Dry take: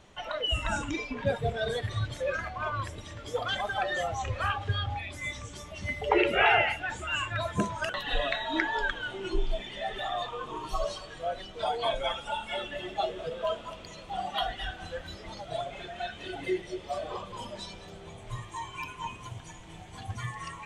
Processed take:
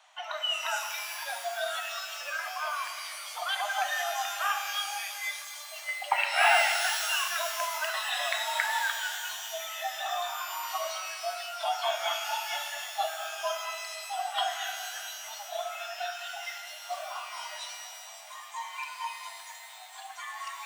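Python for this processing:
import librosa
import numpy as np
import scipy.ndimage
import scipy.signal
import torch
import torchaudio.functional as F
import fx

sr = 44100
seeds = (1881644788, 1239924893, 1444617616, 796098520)

y = scipy.signal.sosfilt(scipy.signal.butter(16, 640.0, 'highpass', fs=sr, output='sos'), x)
y = fx.rev_shimmer(y, sr, seeds[0], rt60_s=1.9, semitones=12, shimmer_db=-2, drr_db=6.0)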